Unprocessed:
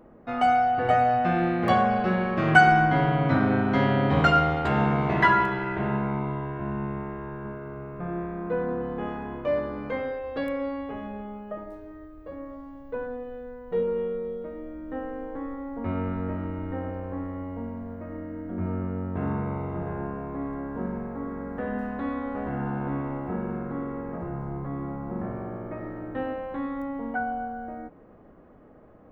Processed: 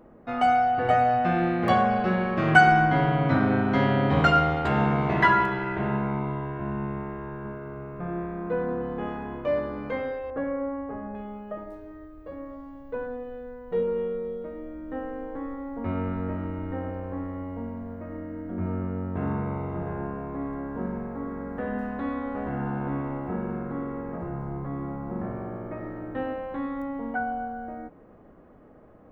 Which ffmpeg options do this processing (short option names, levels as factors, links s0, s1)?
-filter_complex "[0:a]asettb=1/sr,asplit=3[s0][s1][s2];[s0]atrim=end=10.304[s3];[s1]atrim=start=10.3:end=11.15,asetpts=PTS-STARTPTS,afade=t=in:d=0.004:c=qsin,afade=t=out:st=0.846:d=0.004:c=qsin,lowpass=f=1700:w=0.5412,lowpass=f=1700:w=1.3066[s4];[s2]atrim=start=11.146[s5];[s3][s4]acrossfade=d=0.004:c1=hsin:c2=qsin[s6];[s6][s5]acrossfade=d=0.004:c1=qsin:c2=hsin"